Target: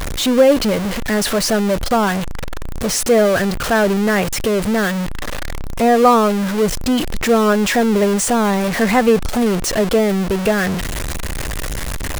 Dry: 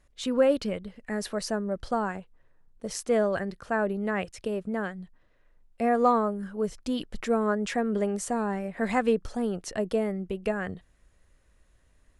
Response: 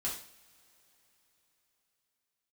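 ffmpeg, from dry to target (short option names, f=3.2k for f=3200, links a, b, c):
-af "aeval=exprs='val(0)+0.5*0.0531*sgn(val(0))':c=same,volume=9dB"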